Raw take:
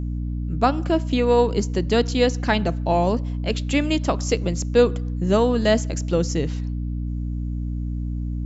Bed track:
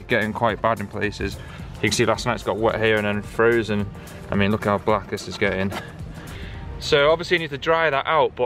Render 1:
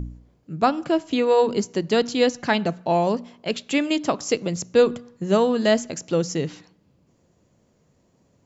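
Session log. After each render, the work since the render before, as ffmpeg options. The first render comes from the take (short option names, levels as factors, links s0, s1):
-af "bandreject=f=60:t=h:w=4,bandreject=f=120:t=h:w=4,bandreject=f=180:t=h:w=4,bandreject=f=240:t=h:w=4,bandreject=f=300:t=h:w=4"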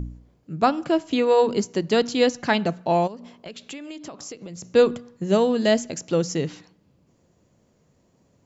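-filter_complex "[0:a]asplit=3[s0][s1][s2];[s0]afade=t=out:st=3.06:d=0.02[s3];[s1]acompressor=threshold=0.02:ratio=8:attack=3.2:release=140:knee=1:detection=peak,afade=t=in:st=3.06:d=0.02,afade=t=out:st=4.62:d=0.02[s4];[s2]afade=t=in:st=4.62:d=0.02[s5];[s3][s4][s5]amix=inputs=3:normalize=0,asettb=1/sr,asplit=3[s6][s7][s8];[s6]atrim=end=5.244[s9];[s7]atrim=start=5.24:end=5.99,asetpts=PTS-STARTPTS,afade=t=in:d=0.004:c=qsin,afade=t=out:st=0.746:d=0.004:c=qsin,equalizer=f=1200:w=1.7:g=-4.5[s10];[s8]atrim=start=5.986[s11];[s9][s10]acrossfade=d=0.004:c1=hsin:c2=qsin[s12];[s12][s11]acrossfade=d=0.004:c1=qsin:c2=hsin"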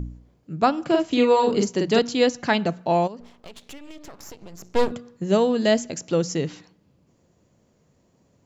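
-filter_complex "[0:a]asettb=1/sr,asplit=3[s0][s1][s2];[s0]atrim=end=0.854[s3];[s1]atrim=start=0.85:end=1.99,asetpts=PTS-STARTPTS,afade=t=in:d=0.004:c=qsin,afade=t=out:st=1.136:d=0.004:c=qsin,asplit=2[s4][s5];[s5]adelay=45,volume=0.794[s6];[s4][s6]amix=inputs=2:normalize=0,atrim=end_sample=50274[s7];[s2]atrim=start=1.986[s8];[s3][s7]acrossfade=d=0.004:c1=hsin:c2=qsin[s9];[s9][s8]acrossfade=d=0.004:c1=qsin:c2=hsin,asettb=1/sr,asplit=3[s10][s11][s12];[s10]atrim=end=3.204[s13];[s11]atrim=start=3.2:end=4.92,asetpts=PTS-STARTPTS,afade=t=in:d=0.004:c=qsin,afade=t=out:st=1.716:d=0.004:c=qsin,aeval=exprs='max(val(0),0)':c=same[s14];[s12]atrim=start=4.916[s15];[s13][s14]acrossfade=d=0.004:c1=hsin:c2=qsin[s16];[s16][s15]acrossfade=d=0.004:c1=qsin:c2=hsin"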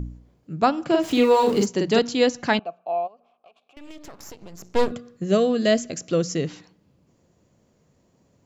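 -filter_complex "[0:a]asettb=1/sr,asplit=3[s0][s1][s2];[s0]atrim=end=1.024[s3];[s1]atrim=start=1.02:end=1.66,asetpts=PTS-STARTPTS,afade=t=in:d=0.004:c=qsin,afade=t=out:st=0.636:d=0.004:c=qsin,aeval=exprs='val(0)+0.5*0.0237*sgn(val(0))':c=same[s4];[s2]atrim=start=1.656[s5];[s3][s4]acrossfade=d=0.004:c1=hsin:c2=qsin[s6];[s6][s5]acrossfade=d=0.004:c1=qsin:c2=hsin,asettb=1/sr,asplit=3[s7][s8][s9];[s7]atrim=end=2.594[s10];[s8]atrim=start=2.59:end=3.77,asetpts=PTS-STARTPTS,afade=t=in:d=0.004:c=qsin,afade=t=out:st=1.176:d=0.004:c=qsin,asplit=3[s11][s12][s13];[s11]bandpass=f=730:t=q:w=8,volume=1[s14];[s12]bandpass=f=1090:t=q:w=8,volume=0.501[s15];[s13]bandpass=f=2440:t=q:w=8,volume=0.355[s16];[s14][s15][s16]amix=inputs=3:normalize=0[s17];[s9]atrim=start=3.766[s18];[s10][s17]acrossfade=d=0.004:c1=hsin:c2=qsin[s19];[s19][s18]acrossfade=d=0.004:c1=qsin:c2=hsin,asettb=1/sr,asplit=3[s20][s21][s22];[s20]atrim=end=4.864[s23];[s21]atrim=start=4.86:end=6.46,asetpts=PTS-STARTPTS,afade=t=in:d=0.004:c=qsin,afade=t=out:st=1.596:d=0.004:c=qsin,asuperstop=centerf=900:order=8:qfactor=4.5[s24];[s22]atrim=start=6.456[s25];[s23][s24]acrossfade=d=0.004:c1=hsin:c2=qsin[s26];[s26][s25]acrossfade=d=0.004:c1=qsin:c2=hsin"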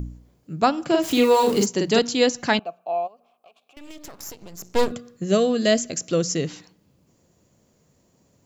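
-af "crystalizer=i=1.5:c=0"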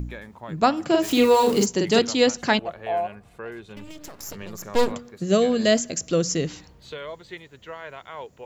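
-filter_complex "[1:a]volume=0.112[s0];[0:a][s0]amix=inputs=2:normalize=0"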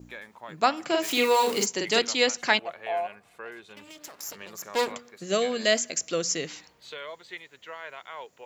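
-af "highpass=f=840:p=1,adynamicequalizer=threshold=0.00562:dfrequency=2200:dqfactor=3.8:tfrequency=2200:tqfactor=3.8:attack=5:release=100:ratio=0.375:range=2.5:mode=boostabove:tftype=bell"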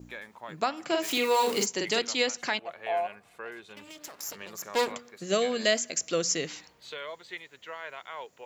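-af "alimiter=limit=0.2:level=0:latency=1:release=377"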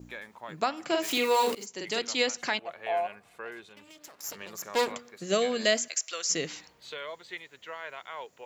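-filter_complex "[0:a]asettb=1/sr,asplit=3[s0][s1][s2];[s0]atrim=end=5.884[s3];[s1]atrim=start=5.88:end=6.3,asetpts=PTS-STARTPTS,afade=t=in:d=0.004:c=qsin,afade=t=out:st=0.416:d=0.004:c=qsin,highpass=1100[s4];[s2]atrim=start=6.296[s5];[s3][s4]acrossfade=d=0.004:c1=hsin:c2=qsin[s6];[s6][s5]acrossfade=d=0.004:c1=qsin:c2=hsin,asplit=4[s7][s8][s9][s10];[s7]atrim=end=1.55,asetpts=PTS-STARTPTS,afade=t=out:st=1.546:d=0.004:c=hsin:silence=0.0841395[s11];[s8]atrim=start=1.55:end=3.692,asetpts=PTS-STARTPTS,afade=t=in:d=0.64:silence=0.0841395[s12];[s9]atrim=start=3.688:end=4.242,asetpts=PTS-STARTPTS,volume=0.531[s13];[s10]atrim=start=4.238[s14];[s11][s12]concat=n=2:v=0:a=1[s15];[s15][s13]acrossfade=d=0.004:c1=hsin:c2=hsin[s16];[s16][s14]acrossfade=d=0.004:c1=hsin:c2=hsin"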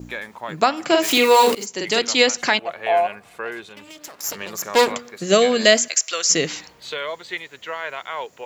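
-af "volume=3.55"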